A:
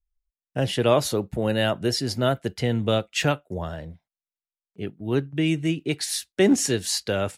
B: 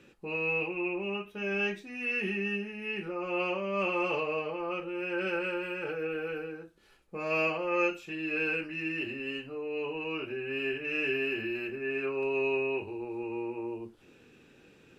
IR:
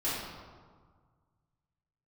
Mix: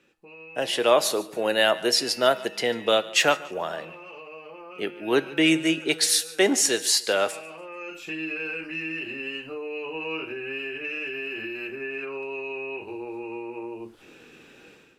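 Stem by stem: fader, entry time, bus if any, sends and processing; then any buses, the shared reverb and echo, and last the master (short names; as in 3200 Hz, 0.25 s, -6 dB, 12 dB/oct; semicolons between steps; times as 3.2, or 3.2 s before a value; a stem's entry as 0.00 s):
+1.0 dB, 0.00 s, no send, echo send -20 dB, HPF 350 Hz 12 dB/oct
+2.0 dB, 0.00 s, no send, no echo send, notches 50/100/150 Hz; limiter -25.5 dBFS, peak gain reduction 8.5 dB; compressor, threshold -39 dBFS, peak gain reduction 9 dB; auto duck -9 dB, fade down 1.20 s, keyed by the first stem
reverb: off
echo: feedback echo 0.145 s, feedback 31%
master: low shelf 310 Hz -9 dB; AGC gain up to 14 dB; resonator 160 Hz, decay 0.61 s, harmonics all, mix 50%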